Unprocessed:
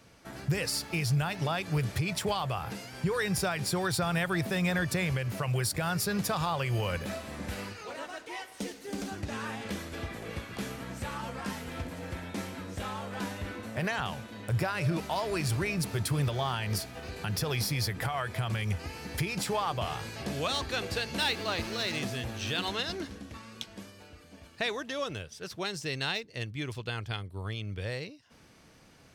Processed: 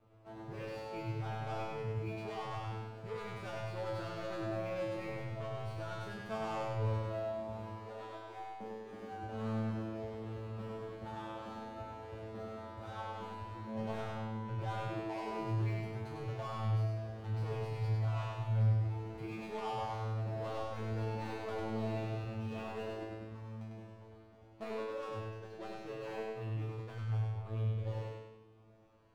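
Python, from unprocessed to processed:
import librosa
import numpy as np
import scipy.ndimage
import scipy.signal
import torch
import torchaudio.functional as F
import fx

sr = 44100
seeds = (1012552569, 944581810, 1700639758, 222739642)

y = scipy.signal.medfilt(x, 25)
y = fx.lowpass(y, sr, hz=2400.0, slope=6)
y = fx.peak_eq(y, sr, hz=190.0, db=-7.5, octaves=1.6)
y = 10.0 ** (-33.5 / 20.0) * np.tanh(y / 10.0 ** (-33.5 / 20.0))
y = fx.comb_fb(y, sr, f0_hz=110.0, decay_s=0.55, harmonics='all', damping=0.0, mix_pct=100)
y = fx.echo_feedback(y, sr, ms=100, feedback_pct=44, wet_db=-4.5)
y = y * librosa.db_to_amplitude(10.0)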